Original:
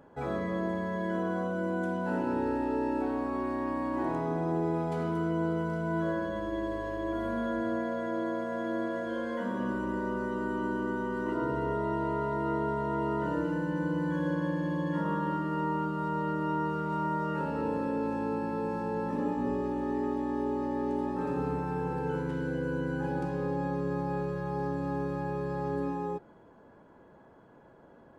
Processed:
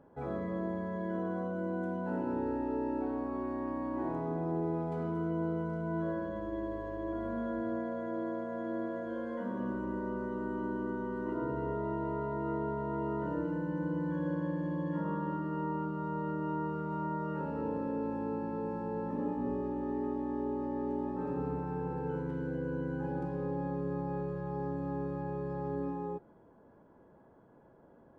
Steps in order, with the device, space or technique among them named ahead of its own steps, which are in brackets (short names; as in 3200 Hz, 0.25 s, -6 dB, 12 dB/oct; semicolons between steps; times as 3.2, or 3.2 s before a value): through cloth (high shelf 1900 Hz -13.5 dB); gain -3 dB